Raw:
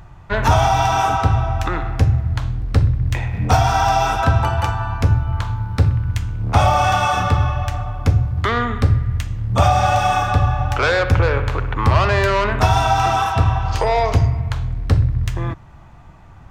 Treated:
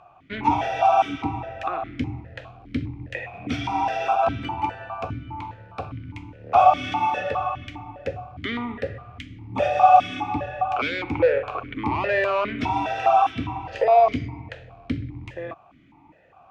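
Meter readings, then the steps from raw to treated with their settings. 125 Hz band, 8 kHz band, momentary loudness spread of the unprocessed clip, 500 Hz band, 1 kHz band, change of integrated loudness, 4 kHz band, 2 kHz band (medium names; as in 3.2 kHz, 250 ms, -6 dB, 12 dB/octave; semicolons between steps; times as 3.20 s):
-19.0 dB, under -15 dB, 8 LU, -2.0 dB, -2.5 dB, -5.5 dB, -9.0 dB, -7.5 dB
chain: stepped vowel filter 4.9 Hz; trim +7 dB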